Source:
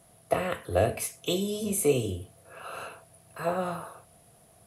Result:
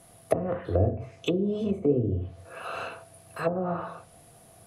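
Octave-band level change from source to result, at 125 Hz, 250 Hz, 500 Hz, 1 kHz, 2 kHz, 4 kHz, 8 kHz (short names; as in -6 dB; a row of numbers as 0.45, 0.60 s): +5.0 dB, +4.0 dB, +0.5 dB, -1.5 dB, -2.0 dB, -6.0 dB, under -15 dB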